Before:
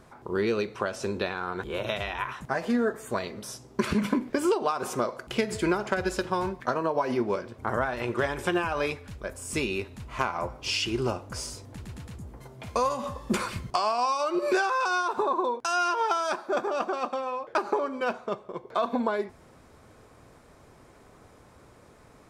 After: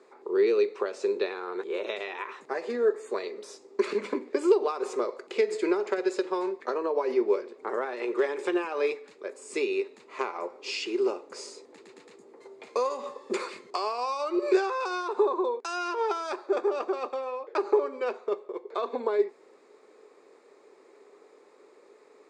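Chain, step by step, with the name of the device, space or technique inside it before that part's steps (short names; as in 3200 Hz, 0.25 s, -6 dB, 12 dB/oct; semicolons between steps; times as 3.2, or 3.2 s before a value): phone speaker on a table (speaker cabinet 350–7100 Hz, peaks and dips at 410 Hz +9 dB, 680 Hz -8 dB, 1000 Hz -4 dB, 1500 Hz -8 dB, 3100 Hz -9 dB, 5700 Hz -9 dB)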